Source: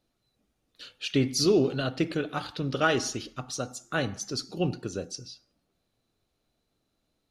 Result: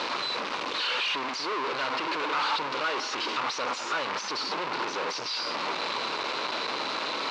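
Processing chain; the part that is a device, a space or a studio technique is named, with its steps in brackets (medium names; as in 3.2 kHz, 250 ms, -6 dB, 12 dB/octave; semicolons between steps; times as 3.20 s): home computer beeper (one-bit comparator; cabinet simulation 630–4100 Hz, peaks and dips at 710 Hz -7 dB, 1 kHz +7 dB, 1.8 kHz -4 dB, 3.3 kHz -5 dB); trim +7 dB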